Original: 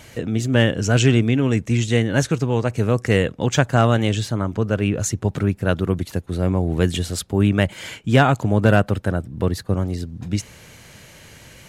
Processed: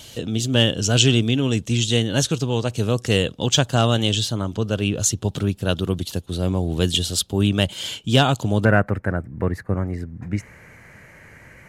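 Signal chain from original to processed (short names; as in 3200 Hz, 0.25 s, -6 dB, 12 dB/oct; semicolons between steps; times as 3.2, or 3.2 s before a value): resonant high shelf 2600 Hz +6.5 dB, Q 3, from 8.65 s -9 dB; gain -2 dB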